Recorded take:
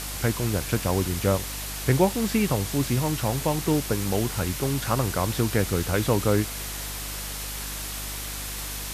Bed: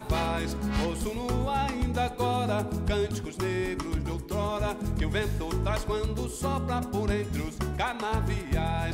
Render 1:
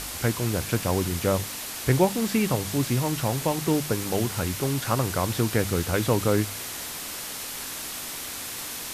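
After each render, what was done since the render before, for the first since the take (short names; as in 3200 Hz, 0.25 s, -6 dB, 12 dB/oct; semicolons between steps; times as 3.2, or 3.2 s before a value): de-hum 50 Hz, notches 4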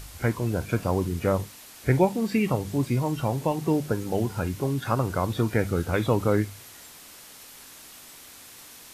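noise print and reduce 12 dB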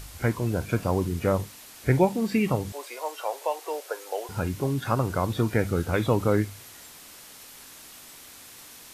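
2.72–4.29 steep high-pass 470 Hz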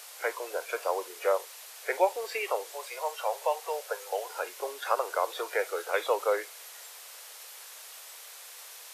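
steep high-pass 450 Hz 48 dB/oct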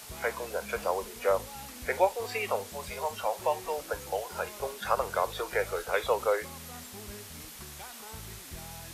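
add bed -18 dB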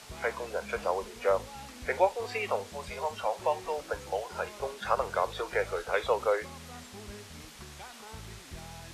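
air absorption 53 m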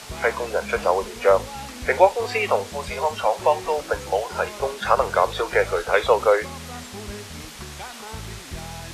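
gain +10 dB; limiter -2 dBFS, peak gain reduction 1 dB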